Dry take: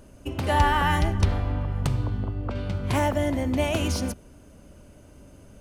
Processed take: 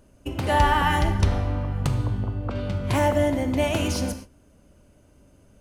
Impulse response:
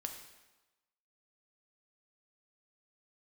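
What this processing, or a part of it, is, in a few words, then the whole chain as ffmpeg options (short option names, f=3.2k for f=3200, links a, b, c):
keyed gated reverb: -filter_complex "[0:a]asplit=3[a][b][c];[1:a]atrim=start_sample=2205[d];[b][d]afir=irnorm=-1:irlink=0[e];[c]apad=whole_len=247013[f];[e][f]sidechaingate=range=-33dB:threshold=-42dB:ratio=16:detection=peak,volume=5.5dB[g];[a][g]amix=inputs=2:normalize=0,volume=-6.5dB"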